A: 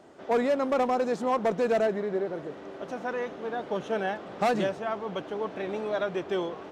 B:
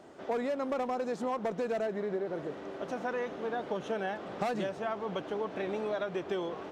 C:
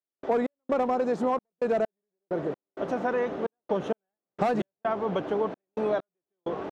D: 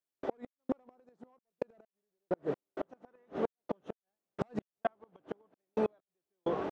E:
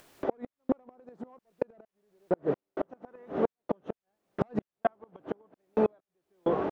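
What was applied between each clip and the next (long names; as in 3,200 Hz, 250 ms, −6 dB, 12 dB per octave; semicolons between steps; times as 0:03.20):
downward compressor, threshold −30 dBFS, peak gain reduction 8.5 dB
high-shelf EQ 2,200 Hz −9.5 dB; gate pattern ".x.xxx.x." 65 BPM −60 dB; level +8 dB
gate with flip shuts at −19 dBFS, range −39 dB; level −1 dB
high-shelf EQ 3,200 Hz −11.5 dB; upward compression, threshold −39 dBFS; level +6 dB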